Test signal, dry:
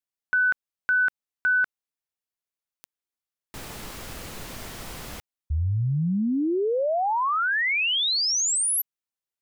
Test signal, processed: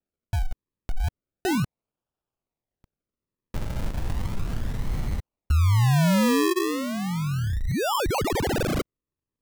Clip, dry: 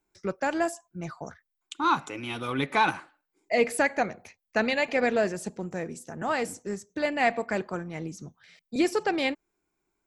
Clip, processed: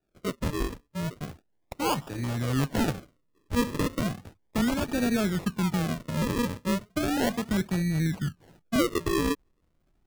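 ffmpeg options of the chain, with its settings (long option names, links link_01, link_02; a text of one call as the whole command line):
ffmpeg -i in.wav -af "asubboost=boost=10:cutoff=180,acrusher=samples=41:mix=1:aa=0.000001:lfo=1:lforange=41:lforate=0.35,acompressor=threshold=-18dB:ratio=6:attack=0.24:release=261:knee=6:detection=rms" out.wav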